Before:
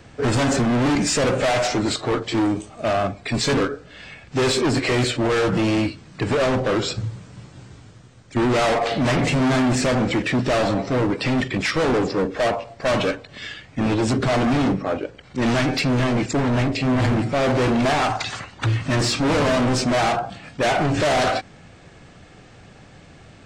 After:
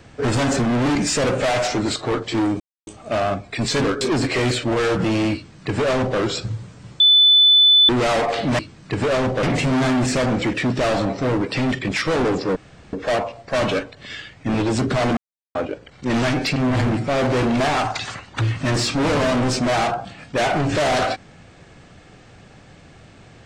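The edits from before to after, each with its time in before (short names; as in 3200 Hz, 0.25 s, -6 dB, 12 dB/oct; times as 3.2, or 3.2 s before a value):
2.6 insert silence 0.27 s
3.74–4.54 cut
5.88–6.72 copy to 9.12
7.53–8.42 bleep 3500 Hz -9 dBFS
12.25 insert room tone 0.37 s
14.49–14.87 mute
15.88–16.81 cut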